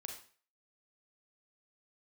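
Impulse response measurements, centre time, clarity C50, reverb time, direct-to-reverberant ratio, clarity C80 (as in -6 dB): 25 ms, 6.0 dB, 0.45 s, 2.0 dB, 10.0 dB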